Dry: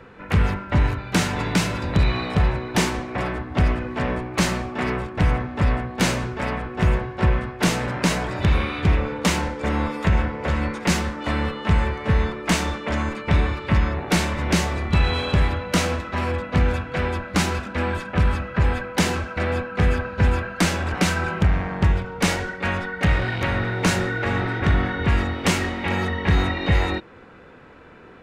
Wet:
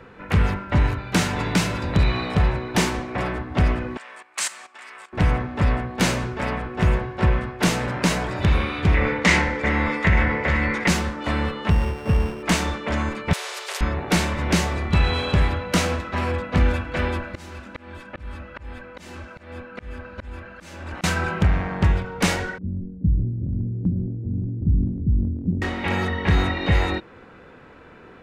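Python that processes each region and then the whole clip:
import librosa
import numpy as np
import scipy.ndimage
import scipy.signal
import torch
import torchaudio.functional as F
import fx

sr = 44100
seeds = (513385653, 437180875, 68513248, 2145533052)

y = fx.chain(x, sr, fx.highpass(hz=1200.0, slope=12),
    fx.level_steps(step_db=14),
    fx.peak_eq(hz=8200.0, db=12.0, octaves=0.66), at=(3.97, 5.13))
y = fx.chain(y, sr, fx.lowpass(hz=7200.0, slope=12),
    fx.peak_eq(hz=2000.0, db=12.0, octaves=0.43),
    fx.sustainer(db_per_s=45.0), at=(8.94, 10.88))
y = fx.chain(y, sr, fx.sample_sort(block=16),
    fx.lowpass(hz=1200.0, slope=6), at=(11.7, 12.43))
y = fx.chain(y, sr, fx.brickwall_highpass(low_hz=380.0),
    fx.spectral_comp(ratio=4.0), at=(13.33, 13.81))
y = fx.chain(y, sr, fx.comb(ms=3.4, depth=0.37),
    fx.auto_swell(attack_ms=748.0),
    fx.echo_single(ms=273, db=-23.0), at=(16.57, 21.04))
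y = fx.chain(y, sr, fx.cheby2_lowpass(hz=890.0, order=4, stop_db=60),
    fx.transient(attack_db=0, sustain_db=5), at=(22.58, 25.62))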